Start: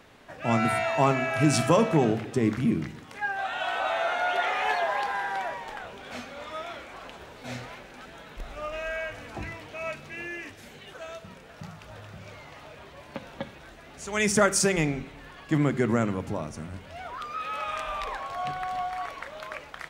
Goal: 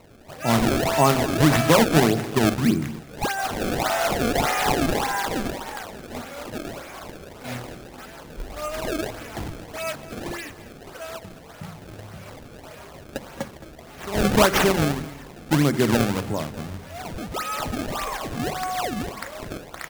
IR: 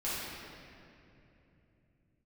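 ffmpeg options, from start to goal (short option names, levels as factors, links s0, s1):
-af "acrusher=samples=26:mix=1:aa=0.000001:lfo=1:lforange=41.6:lforate=1.7,aecho=1:1:217:0.15,volume=1.68"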